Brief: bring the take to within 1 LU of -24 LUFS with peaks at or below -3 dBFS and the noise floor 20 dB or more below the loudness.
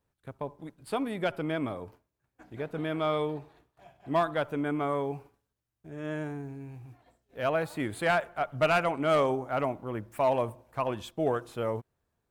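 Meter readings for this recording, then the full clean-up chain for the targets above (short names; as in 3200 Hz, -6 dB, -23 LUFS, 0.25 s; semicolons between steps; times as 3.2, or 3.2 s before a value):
clipped 0.2%; flat tops at -18.0 dBFS; loudness -31.0 LUFS; peak -18.0 dBFS; loudness target -24.0 LUFS
-> clip repair -18 dBFS; gain +7 dB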